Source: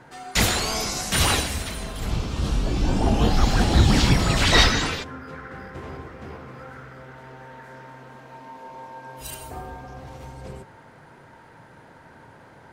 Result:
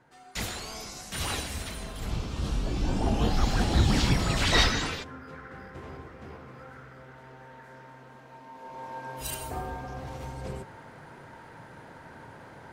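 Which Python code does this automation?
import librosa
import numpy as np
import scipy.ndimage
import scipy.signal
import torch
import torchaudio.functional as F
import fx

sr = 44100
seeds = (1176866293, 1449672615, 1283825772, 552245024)

y = fx.gain(x, sr, db=fx.line((1.14, -13.5), (1.62, -6.0), (8.49, -6.0), (8.94, 1.0)))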